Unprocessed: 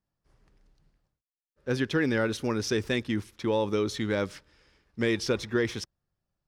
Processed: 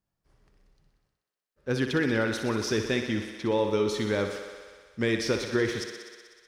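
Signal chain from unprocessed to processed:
0:02.69–0:03.59: Bessel low-pass filter 9,000 Hz
on a send: feedback echo with a high-pass in the loop 62 ms, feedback 80%, high-pass 190 Hz, level −8.5 dB

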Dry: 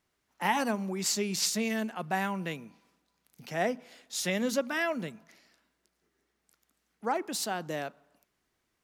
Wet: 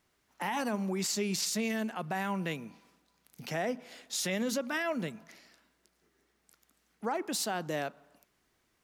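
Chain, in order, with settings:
in parallel at −0.5 dB: downward compressor, threshold −40 dBFS, peak gain reduction 16.5 dB
on the sum: brickwall limiter −21.5 dBFS, peak gain reduction 9 dB
level −1.5 dB

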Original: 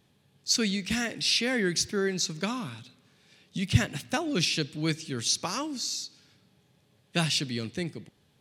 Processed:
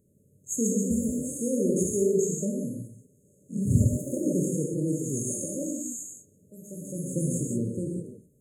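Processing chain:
reverb whose tail is shaped and stops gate 210 ms flat, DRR −1 dB
delay with pitch and tempo change per echo 167 ms, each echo +1 semitone, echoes 3, each echo −6 dB
brick-wall band-stop 620–6,400 Hz

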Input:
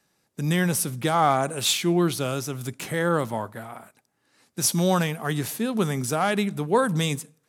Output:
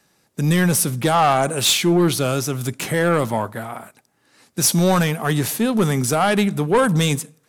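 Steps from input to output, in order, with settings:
soft clipping −17.5 dBFS, distortion −13 dB
level +8 dB

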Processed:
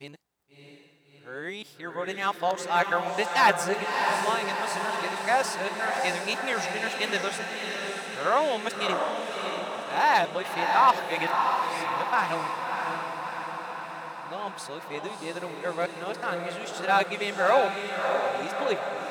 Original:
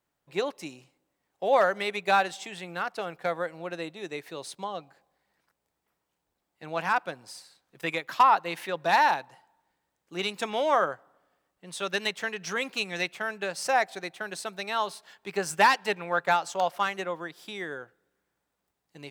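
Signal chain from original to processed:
played backwards from end to start
feedback delay with all-pass diffusion 641 ms, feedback 65%, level −4 dB

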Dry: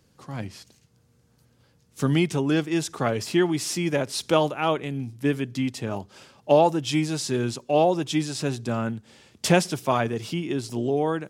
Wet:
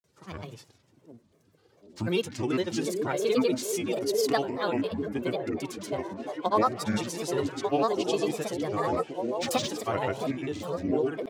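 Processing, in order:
high-pass filter 100 Hz
comb filter 2.4 ms, depth 57%
echo through a band-pass that steps 746 ms, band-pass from 280 Hz, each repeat 0.7 octaves, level −1 dB
spring reverb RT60 2.4 s, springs 49 ms, chirp 50 ms, DRR 18.5 dB
granular cloud, pitch spread up and down by 7 semitones
level −5 dB

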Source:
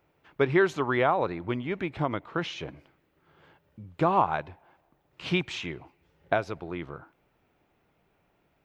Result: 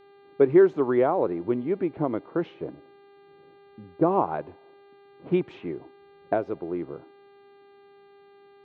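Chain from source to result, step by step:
low-pass that shuts in the quiet parts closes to 340 Hz, open at −25 dBFS
resonant band-pass 360 Hz, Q 1.3
hum with harmonics 400 Hz, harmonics 11, −61 dBFS −8 dB per octave
level +7 dB

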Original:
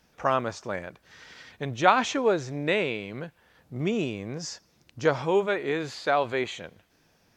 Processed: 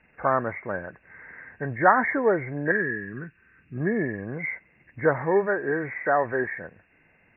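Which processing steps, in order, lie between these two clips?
hearing-aid frequency compression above 1,500 Hz 4 to 1
0:02.71–0:03.78: flat-topped bell 690 Hz −15 dB 1.2 octaves
level +1.5 dB

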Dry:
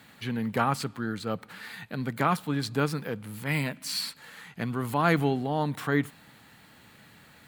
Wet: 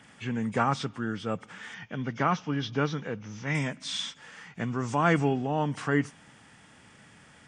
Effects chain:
hearing-aid frequency compression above 2,100 Hz 1.5 to 1
0:01.74–0:03.55: elliptic low-pass filter 6,100 Hz, stop band 40 dB

